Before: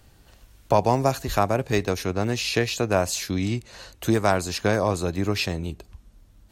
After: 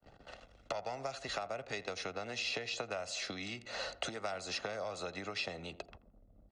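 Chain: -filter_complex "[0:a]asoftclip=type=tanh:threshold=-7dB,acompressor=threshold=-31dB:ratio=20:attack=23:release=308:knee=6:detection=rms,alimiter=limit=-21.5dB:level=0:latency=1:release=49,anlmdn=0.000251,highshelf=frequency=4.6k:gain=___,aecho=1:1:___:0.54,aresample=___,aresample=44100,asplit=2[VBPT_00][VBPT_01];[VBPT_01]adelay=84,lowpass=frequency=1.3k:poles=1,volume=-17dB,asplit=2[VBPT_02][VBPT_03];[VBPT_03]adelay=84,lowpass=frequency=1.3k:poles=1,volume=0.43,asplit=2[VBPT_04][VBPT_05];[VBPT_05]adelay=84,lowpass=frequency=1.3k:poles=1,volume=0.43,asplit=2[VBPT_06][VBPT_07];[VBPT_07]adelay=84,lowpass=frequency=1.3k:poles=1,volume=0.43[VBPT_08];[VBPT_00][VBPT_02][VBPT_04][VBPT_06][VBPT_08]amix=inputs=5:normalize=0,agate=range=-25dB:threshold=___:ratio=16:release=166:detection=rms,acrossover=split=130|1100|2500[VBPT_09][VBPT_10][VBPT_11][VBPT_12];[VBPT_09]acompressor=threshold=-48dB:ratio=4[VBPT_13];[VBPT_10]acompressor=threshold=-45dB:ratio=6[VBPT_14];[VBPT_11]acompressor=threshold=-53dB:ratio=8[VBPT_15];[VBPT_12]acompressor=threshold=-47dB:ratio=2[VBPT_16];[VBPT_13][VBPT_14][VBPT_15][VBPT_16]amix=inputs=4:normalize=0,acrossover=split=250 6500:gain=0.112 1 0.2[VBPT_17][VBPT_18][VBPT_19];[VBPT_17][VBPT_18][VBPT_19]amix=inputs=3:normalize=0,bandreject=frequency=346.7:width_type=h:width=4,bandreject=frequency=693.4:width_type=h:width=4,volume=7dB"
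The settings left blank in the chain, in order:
-7, 1.5, 22050, -50dB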